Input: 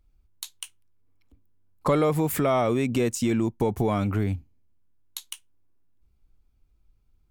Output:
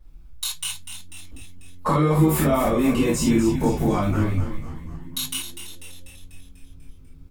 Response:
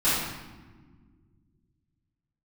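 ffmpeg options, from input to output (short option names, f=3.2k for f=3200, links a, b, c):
-filter_complex "[0:a]acompressor=threshold=-34dB:ratio=6,asplit=8[a][b][c][d][e][f][g][h];[b]adelay=246,afreqshift=-90,volume=-9.5dB[i];[c]adelay=492,afreqshift=-180,volume=-14.5dB[j];[d]adelay=738,afreqshift=-270,volume=-19.6dB[k];[e]adelay=984,afreqshift=-360,volume=-24.6dB[l];[f]adelay=1230,afreqshift=-450,volume=-29.6dB[m];[g]adelay=1476,afreqshift=-540,volume=-34.7dB[n];[h]adelay=1722,afreqshift=-630,volume=-39.7dB[o];[a][i][j][k][l][m][n][o]amix=inputs=8:normalize=0[p];[1:a]atrim=start_sample=2205,atrim=end_sample=3969[q];[p][q]afir=irnorm=-1:irlink=0,volume=2dB"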